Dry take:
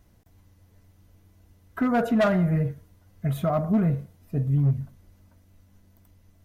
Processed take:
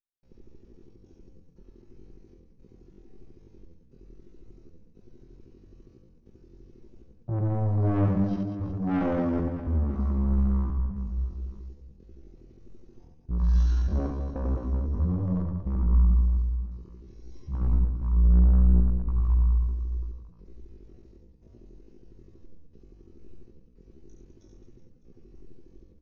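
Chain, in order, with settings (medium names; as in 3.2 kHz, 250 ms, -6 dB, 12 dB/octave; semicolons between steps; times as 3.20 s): rattle on loud lows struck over -27 dBFS, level -30 dBFS; treble shelf 2.1 kHz -10 dB; comb 7.2 ms, depth 74%; mains buzz 50 Hz, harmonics 24, -55 dBFS -2 dB/octave; saturation -23.5 dBFS, distortion -9 dB; wide varispeed 0.427×; trance gate ".xxxx.xxx" 99 bpm -60 dB; reverse bouncing-ball echo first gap 50 ms, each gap 1.4×, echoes 5; simulated room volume 2000 m³, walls furnished, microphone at 1.1 m; tempo 0.58×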